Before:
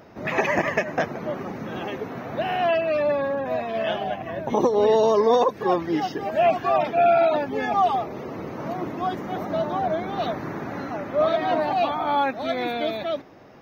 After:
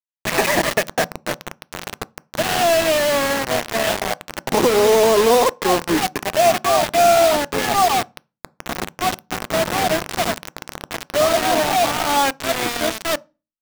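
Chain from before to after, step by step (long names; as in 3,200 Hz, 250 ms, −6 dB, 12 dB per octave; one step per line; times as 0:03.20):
bit reduction 4 bits
on a send: convolution reverb RT60 0.30 s, pre-delay 3 ms, DRR 20.5 dB
on the sum: level +3.5 dB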